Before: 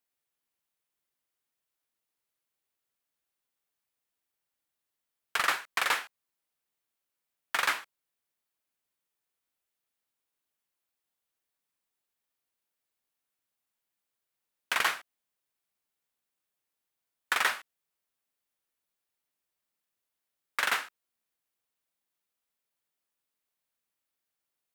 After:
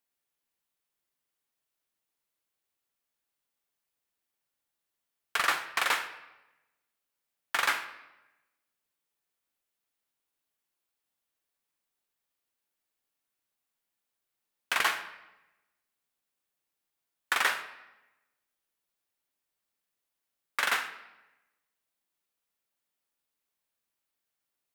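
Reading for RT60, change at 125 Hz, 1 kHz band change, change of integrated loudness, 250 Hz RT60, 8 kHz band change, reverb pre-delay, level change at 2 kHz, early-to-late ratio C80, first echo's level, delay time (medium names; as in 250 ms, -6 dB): 1.0 s, no reading, +0.5 dB, 0.0 dB, 1.1 s, +0.5 dB, 3 ms, +0.5 dB, 13.0 dB, no echo, no echo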